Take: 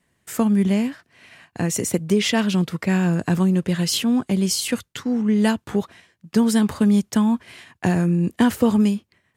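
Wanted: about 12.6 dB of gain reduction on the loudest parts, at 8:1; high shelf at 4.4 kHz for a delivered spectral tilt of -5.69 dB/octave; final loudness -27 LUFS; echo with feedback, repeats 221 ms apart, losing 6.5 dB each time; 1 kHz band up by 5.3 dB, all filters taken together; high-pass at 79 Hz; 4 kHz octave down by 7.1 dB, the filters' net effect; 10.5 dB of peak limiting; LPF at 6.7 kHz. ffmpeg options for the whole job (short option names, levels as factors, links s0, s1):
-af "highpass=79,lowpass=6700,equalizer=f=1000:t=o:g=7,equalizer=f=4000:t=o:g=-7.5,highshelf=f=4400:g=-4,acompressor=threshold=0.0562:ratio=8,alimiter=limit=0.0794:level=0:latency=1,aecho=1:1:221|442|663|884|1105|1326:0.473|0.222|0.105|0.0491|0.0231|0.0109,volume=1.5"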